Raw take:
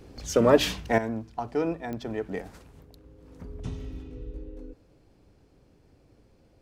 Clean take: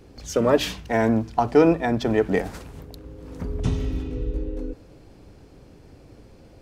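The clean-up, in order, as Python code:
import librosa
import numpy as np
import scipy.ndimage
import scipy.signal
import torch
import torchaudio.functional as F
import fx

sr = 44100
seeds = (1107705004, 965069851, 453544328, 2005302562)

y = fx.fix_declick_ar(x, sr, threshold=10.0)
y = fx.gain(y, sr, db=fx.steps((0.0, 0.0), (0.98, 11.5)))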